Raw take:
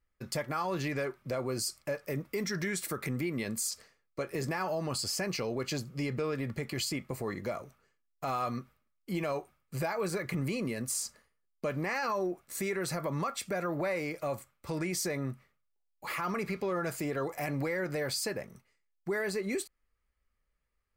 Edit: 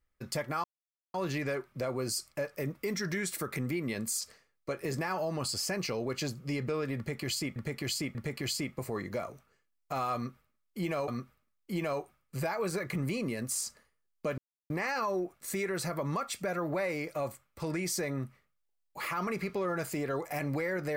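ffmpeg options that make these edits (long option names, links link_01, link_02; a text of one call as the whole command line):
ffmpeg -i in.wav -filter_complex "[0:a]asplit=6[link_01][link_02][link_03][link_04][link_05][link_06];[link_01]atrim=end=0.64,asetpts=PTS-STARTPTS,afade=type=out:start_time=0.636:duration=0.004:curve=hsin,apad=pad_dur=0.5[link_07];[link_02]atrim=start=0.64:end=7.062,asetpts=PTS-STARTPTS,afade=type=in:duration=0.004:curve=hsin[link_08];[link_03]atrim=start=6.468:end=7.062[link_09];[link_04]atrim=start=6.468:end=9.402[link_10];[link_05]atrim=start=8.468:end=11.77,asetpts=PTS-STARTPTS,afade=type=out:start_time=3.298:duration=0.004:curve=hsin,apad=pad_dur=0.32[link_11];[link_06]atrim=start=11.77,asetpts=PTS-STARTPTS,afade=type=in:duration=0.004:curve=hsin[link_12];[link_07][link_08]concat=n=2:v=0:a=1[link_13];[link_13][link_09]acrossfade=duration=0.004:curve1=hsin:curve2=hsin[link_14];[link_14][link_10]acrossfade=duration=0.004:curve1=hsin:curve2=hsin[link_15];[link_11][link_12]concat=n=2:v=0:a=1[link_16];[link_15][link_16]acrossfade=duration=0.004:curve1=hsin:curve2=hsin" out.wav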